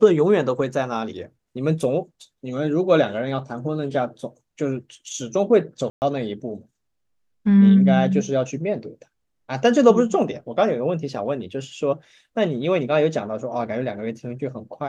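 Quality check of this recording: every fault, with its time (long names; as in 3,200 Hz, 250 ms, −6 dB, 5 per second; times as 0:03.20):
0:05.90–0:06.02: drop-out 119 ms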